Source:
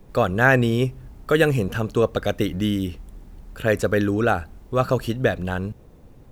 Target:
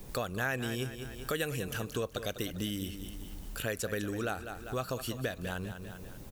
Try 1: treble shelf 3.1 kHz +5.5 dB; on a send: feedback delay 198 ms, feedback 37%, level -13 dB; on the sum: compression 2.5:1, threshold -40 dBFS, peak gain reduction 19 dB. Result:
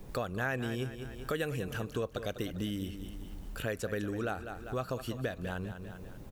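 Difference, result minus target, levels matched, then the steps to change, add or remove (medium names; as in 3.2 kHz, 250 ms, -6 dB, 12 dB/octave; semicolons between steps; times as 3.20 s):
8 kHz band -7.0 dB
change: treble shelf 3.1 kHz +15.5 dB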